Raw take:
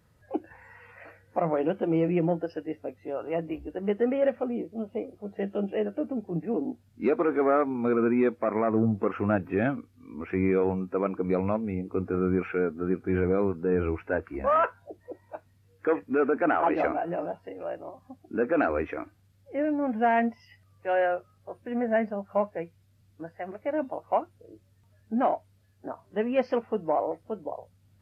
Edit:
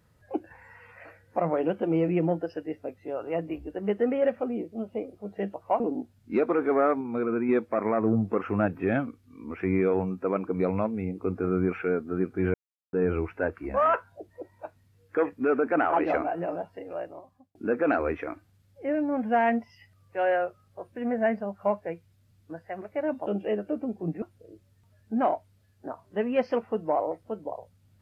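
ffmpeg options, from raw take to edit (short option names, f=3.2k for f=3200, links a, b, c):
-filter_complex "[0:a]asplit=10[a][b][c][d][e][f][g][h][i][j];[a]atrim=end=5.542[k];[b]atrim=start=23.958:end=24.222[l];[c]atrim=start=6.498:end=7.712[m];[d]atrim=start=7.708:end=8.192,asetpts=PTS-STARTPTS,volume=-3.5dB[n];[e]atrim=start=8.188:end=13.24,asetpts=PTS-STARTPTS,afade=t=out:st=5.048:d=0.004:c=hsin[o];[f]atrim=start=13.24:end=13.63,asetpts=PTS-STARTPTS,volume=0[p];[g]atrim=start=13.63:end=18.25,asetpts=PTS-STARTPTS,afade=t=in:d=0.004:c=hsin,afade=t=out:st=4.06:d=0.56[q];[h]atrim=start=18.25:end=23.962,asetpts=PTS-STARTPTS,afade=t=in:d=0.004:c=hsin[r];[i]atrim=start=5.538:end=6.502[s];[j]atrim=start=24.218[t];[k][l]acrossfade=d=0.004:c1=hsin:c2=hsin[u];[u][m]acrossfade=d=0.004:c1=hsin:c2=hsin[v];[v][n]acrossfade=d=0.004:c1=hsin:c2=hsin[w];[o][p][q][r]concat=n=4:v=0:a=1[x];[w][x]acrossfade=d=0.004:c1=hsin:c2=hsin[y];[y][s]acrossfade=d=0.004:c1=hsin:c2=hsin[z];[z][t]acrossfade=d=0.004:c1=hsin:c2=hsin"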